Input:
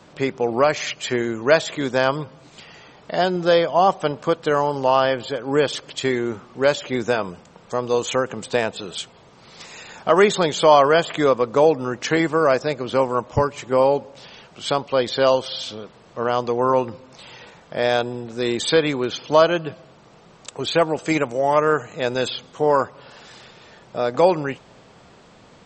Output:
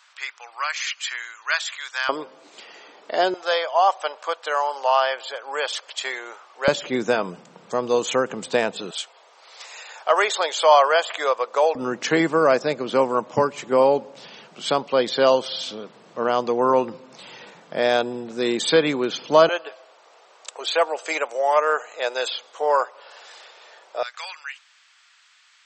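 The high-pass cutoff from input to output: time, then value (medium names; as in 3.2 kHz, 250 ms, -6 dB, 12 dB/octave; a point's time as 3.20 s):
high-pass 24 dB/octave
1.2 kHz
from 2.09 s 300 Hz
from 3.34 s 630 Hz
from 6.68 s 150 Hz
from 8.91 s 560 Hz
from 11.75 s 160 Hz
from 19.49 s 510 Hz
from 24.03 s 1.5 kHz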